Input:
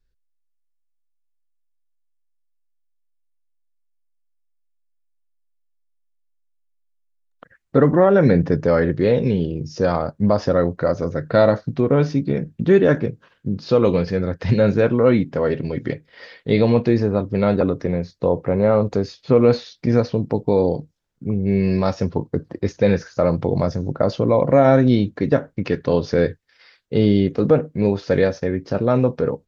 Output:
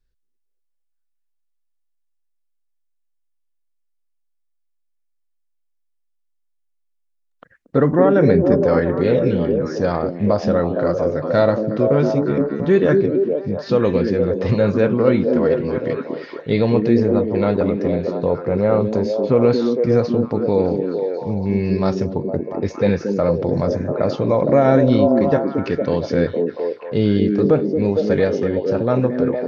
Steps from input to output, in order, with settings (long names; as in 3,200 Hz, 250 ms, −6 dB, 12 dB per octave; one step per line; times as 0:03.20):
echo through a band-pass that steps 230 ms, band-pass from 290 Hz, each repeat 0.7 octaves, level 0 dB
level −1 dB